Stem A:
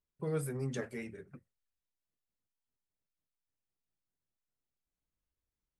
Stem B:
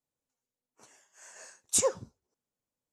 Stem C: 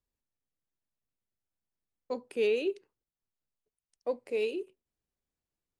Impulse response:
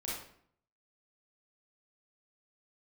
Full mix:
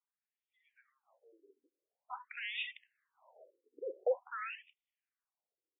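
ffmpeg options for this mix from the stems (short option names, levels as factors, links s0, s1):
-filter_complex "[0:a]alimiter=level_in=2.82:limit=0.0631:level=0:latency=1,volume=0.355,equalizer=f=540:t=o:w=2.9:g=-8,adelay=300,volume=0.422[s0];[1:a]asoftclip=type=tanh:threshold=0.0631,alimiter=level_in=2.24:limit=0.0631:level=0:latency=1,volume=0.447,adelay=2000,volume=0.841[s1];[2:a]aeval=exprs='if(lt(val(0),0),0.447*val(0),val(0))':c=same,dynaudnorm=f=220:g=13:m=3.98,asoftclip=type=tanh:threshold=0.0398,volume=1.33,asplit=2[s2][s3];[s3]apad=whole_len=217233[s4];[s1][s4]sidechaincompress=threshold=0.00224:ratio=8:attack=16:release=342[s5];[s0][s5][s2]amix=inputs=3:normalize=0,afftfilt=real='re*between(b*sr/1024,360*pow(2700/360,0.5+0.5*sin(2*PI*0.47*pts/sr))/1.41,360*pow(2700/360,0.5+0.5*sin(2*PI*0.47*pts/sr))*1.41)':imag='im*between(b*sr/1024,360*pow(2700/360,0.5+0.5*sin(2*PI*0.47*pts/sr))/1.41,360*pow(2700/360,0.5+0.5*sin(2*PI*0.47*pts/sr))*1.41)':win_size=1024:overlap=0.75"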